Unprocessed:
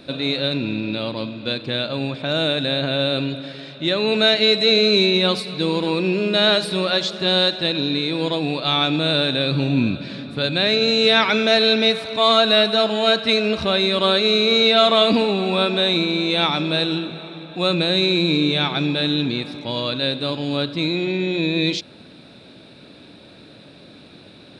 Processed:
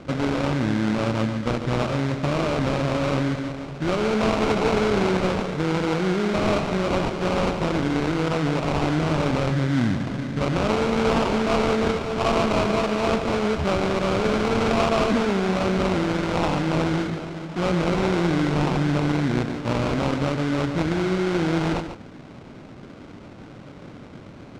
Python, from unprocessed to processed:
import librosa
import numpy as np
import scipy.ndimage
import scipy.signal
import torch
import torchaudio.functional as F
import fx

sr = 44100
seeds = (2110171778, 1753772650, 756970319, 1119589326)

p1 = fx.low_shelf(x, sr, hz=150.0, db=10.0)
p2 = fx.over_compress(p1, sr, threshold_db=-23.0, ratio=-1.0)
p3 = p1 + (p2 * 10.0 ** (-1.0 / 20.0))
p4 = fx.sample_hold(p3, sr, seeds[0], rate_hz=1800.0, jitter_pct=20)
p5 = fx.air_absorb(p4, sr, metres=110.0)
p6 = p5 + 10.0 ** (-9.5 / 20.0) * np.pad(p5, (int(143 * sr / 1000.0), 0))[:len(p5)]
y = p6 * 10.0 ** (-7.5 / 20.0)